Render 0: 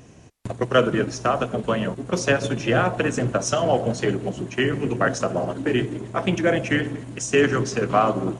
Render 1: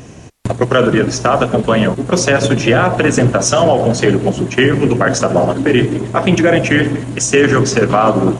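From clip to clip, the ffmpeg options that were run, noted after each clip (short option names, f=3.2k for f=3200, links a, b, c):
-af "alimiter=level_in=13.5dB:limit=-1dB:release=50:level=0:latency=1,volume=-1dB"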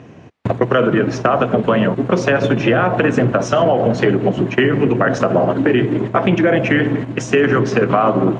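-af "agate=range=-7dB:threshold=-21dB:ratio=16:detection=peak,acompressor=threshold=-17dB:ratio=2.5,highpass=110,lowpass=2.6k,volume=4dB"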